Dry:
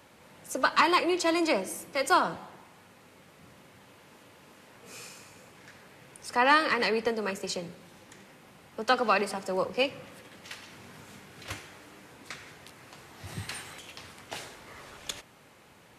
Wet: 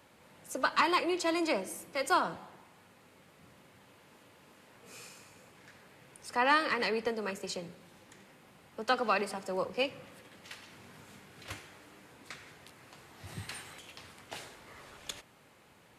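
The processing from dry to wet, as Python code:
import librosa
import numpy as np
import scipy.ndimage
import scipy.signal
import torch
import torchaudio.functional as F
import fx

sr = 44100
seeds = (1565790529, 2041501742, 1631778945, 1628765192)

y = fx.peak_eq(x, sr, hz=5800.0, db=-2.5, octaves=0.22)
y = F.gain(torch.from_numpy(y), -4.5).numpy()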